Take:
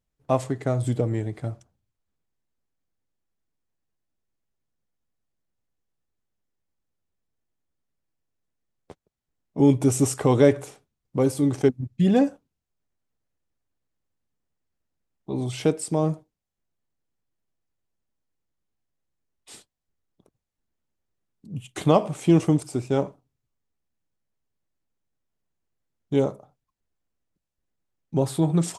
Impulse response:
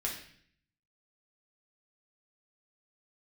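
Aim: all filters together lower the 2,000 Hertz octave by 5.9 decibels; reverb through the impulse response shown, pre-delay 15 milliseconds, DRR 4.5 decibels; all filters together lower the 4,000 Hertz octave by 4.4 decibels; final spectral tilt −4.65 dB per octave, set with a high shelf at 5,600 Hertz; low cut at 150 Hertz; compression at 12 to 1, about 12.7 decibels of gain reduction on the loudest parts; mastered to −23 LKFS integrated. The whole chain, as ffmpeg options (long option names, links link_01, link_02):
-filter_complex "[0:a]highpass=150,equalizer=frequency=2000:width_type=o:gain=-7,equalizer=frequency=4000:width_type=o:gain=-7,highshelf=frequency=5600:gain=7.5,acompressor=threshold=-25dB:ratio=12,asplit=2[link_01][link_02];[1:a]atrim=start_sample=2205,adelay=15[link_03];[link_02][link_03]afir=irnorm=-1:irlink=0,volume=-7.5dB[link_04];[link_01][link_04]amix=inputs=2:normalize=0,volume=8dB"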